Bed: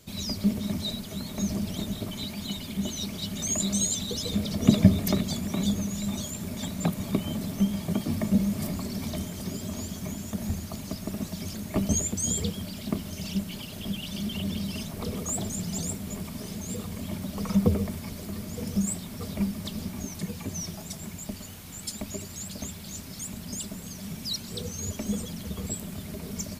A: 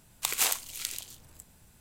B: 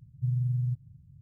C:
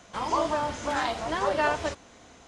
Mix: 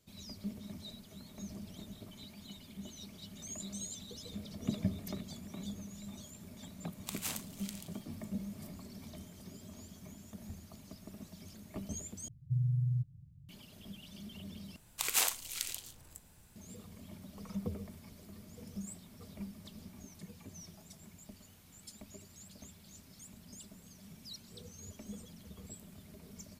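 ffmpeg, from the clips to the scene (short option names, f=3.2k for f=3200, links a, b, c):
-filter_complex "[1:a]asplit=2[a][b];[0:a]volume=-16.5dB[c];[b]alimiter=limit=-11.5dB:level=0:latency=1:release=37[d];[c]asplit=3[e][f][g];[e]atrim=end=12.284[h];[2:a]atrim=end=1.21,asetpts=PTS-STARTPTS,volume=-3.5dB[i];[f]atrim=start=13.486:end=14.764[j];[d]atrim=end=1.8,asetpts=PTS-STARTPTS,volume=-2.5dB[k];[g]atrim=start=16.556[l];[a]atrim=end=1.8,asetpts=PTS-STARTPTS,volume=-13dB,afade=t=in:d=0.004:c=hsin,afade=t=out:st=1.796:d=0.004:c=hsin,adelay=6840[m];[h][i]acrossfade=d=0.004:c1=hsin:c2=hsin[n];[n][j]acrossfade=d=0.004:c1=hsin:c2=hsin[o];[o][k]acrossfade=d=0.004:c1=hsin:c2=hsin[p];[p][l]acrossfade=d=0.004:c1=hsin:c2=hsin[q];[q][m]amix=inputs=2:normalize=0"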